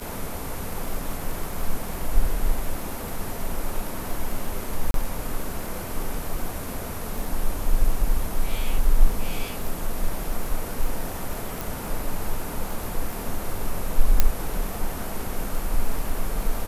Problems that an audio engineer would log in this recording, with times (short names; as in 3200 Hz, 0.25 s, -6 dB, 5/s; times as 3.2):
crackle 14/s -28 dBFS
4.91–4.94 gap 32 ms
11.61 pop
14.2 pop -2 dBFS